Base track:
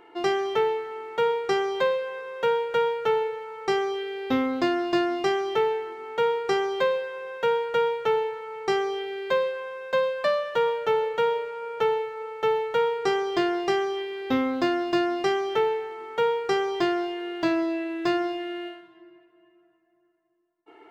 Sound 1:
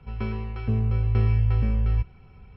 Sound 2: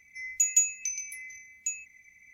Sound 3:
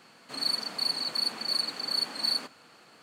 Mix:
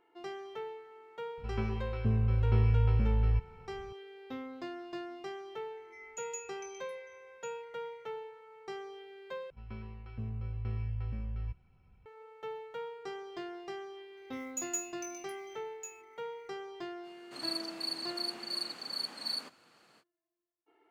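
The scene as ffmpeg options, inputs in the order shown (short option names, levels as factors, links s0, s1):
-filter_complex "[1:a]asplit=2[s0][s1];[2:a]asplit=2[s2][s3];[0:a]volume=0.126[s4];[s2]aemphasis=mode=reproduction:type=75kf[s5];[s1]bandreject=f=420:w=9[s6];[s3]acrusher=bits=4:mode=log:mix=0:aa=0.000001[s7];[s4]asplit=2[s8][s9];[s8]atrim=end=9.504[s10];[s6]atrim=end=2.56,asetpts=PTS-STARTPTS,volume=0.178[s11];[s9]atrim=start=12.056[s12];[s0]atrim=end=2.56,asetpts=PTS-STARTPTS,volume=0.562,afade=t=in:d=0.004:c=hsin,afade=t=out:st=2.556:d=0.004:c=hsin,adelay=1370[s13];[s5]atrim=end=2.33,asetpts=PTS-STARTPTS,volume=0.299,afade=t=in:d=0.004:c=hsin,afade=t=out:st=2.326:d=0.004:c=hsin,adelay=254457S[s14];[s7]atrim=end=2.33,asetpts=PTS-STARTPTS,volume=0.211,afade=t=in:d=0.004:c=hsin,afade=t=out:st=2.326:d=0.004:c=hsin,adelay=14170[s15];[3:a]atrim=end=3.02,asetpts=PTS-STARTPTS,volume=0.398,afade=t=in:d=0.05,afade=t=out:st=2.97:d=0.05,adelay=17020[s16];[s10][s11]acrossfade=d=0.004:c1=hsin:c2=hsin[s17];[s17][s12]acrossfade=d=0.004:c1=hsin:c2=hsin[s18];[s18][s13][s14][s15][s16]amix=inputs=5:normalize=0"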